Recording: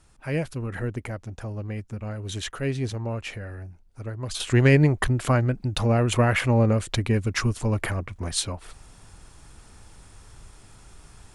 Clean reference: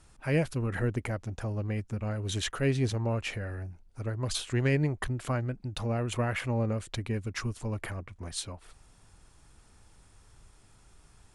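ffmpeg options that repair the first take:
-af "asetnsamples=n=441:p=0,asendcmd='4.4 volume volume -9.5dB',volume=0dB"

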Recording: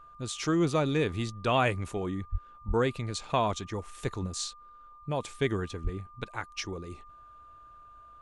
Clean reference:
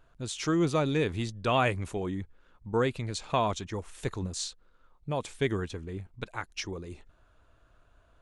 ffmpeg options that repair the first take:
-filter_complex "[0:a]bandreject=f=1.2k:w=30,asplit=3[a][b][c];[a]afade=t=out:st=2.31:d=0.02[d];[b]highpass=f=140:w=0.5412,highpass=f=140:w=1.3066,afade=t=in:st=2.31:d=0.02,afade=t=out:st=2.43:d=0.02[e];[c]afade=t=in:st=2.43:d=0.02[f];[d][e][f]amix=inputs=3:normalize=0,asplit=3[g][h][i];[g]afade=t=out:st=2.67:d=0.02[j];[h]highpass=f=140:w=0.5412,highpass=f=140:w=1.3066,afade=t=in:st=2.67:d=0.02,afade=t=out:st=2.79:d=0.02[k];[i]afade=t=in:st=2.79:d=0.02[l];[j][k][l]amix=inputs=3:normalize=0,asplit=3[m][n][o];[m]afade=t=out:st=5.83:d=0.02[p];[n]highpass=f=140:w=0.5412,highpass=f=140:w=1.3066,afade=t=in:st=5.83:d=0.02,afade=t=out:st=5.95:d=0.02[q];[o]afade=t=in:st=5.95:d=0.02[r];[p][q][r]amix=inputs=3:normalize=0"

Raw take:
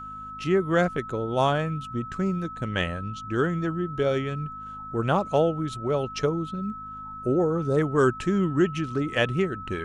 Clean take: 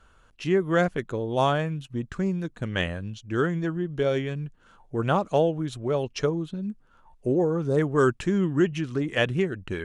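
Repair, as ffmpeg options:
-af "bandreject=f=51.8:t=h:w=4,bandreject=f=103.6:t=h:w=4,bandreject=f=155.4:t=h:w=4,bandreject=f=207.2:t=h:w=4,bandreject=f=259:t=h:w=4,bandreject=f=1.3k:w=30"

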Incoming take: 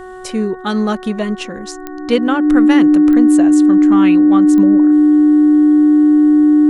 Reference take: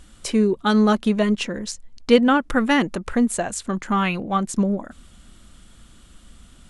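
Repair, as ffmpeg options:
-af "adeclick=t=4,bandreject=f=370.1:t=h:w=4,bandreject=f=740.2:t=h:w=4,bandreject=f=1.1103k:t=h:w=4,bandreject=f=1.4804k:t=h:w=4,bandreject=f=1.8505k:t=h:w=4,bandreject=f=300:w=30"

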